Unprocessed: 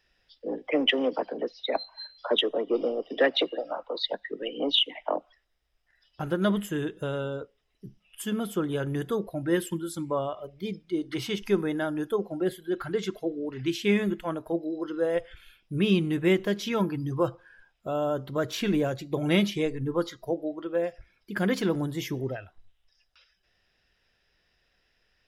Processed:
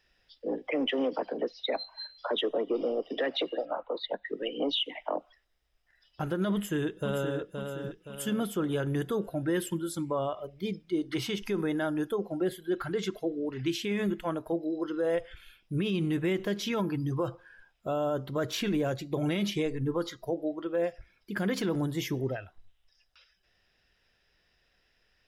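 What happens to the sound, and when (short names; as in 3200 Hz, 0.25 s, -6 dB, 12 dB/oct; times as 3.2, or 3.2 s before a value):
3.65–4.26 running mean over 8 samples
6.53–7.39 echo throw 0.52 s, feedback 45%, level -6.5 dB
whole clip: limiter -21 dBFS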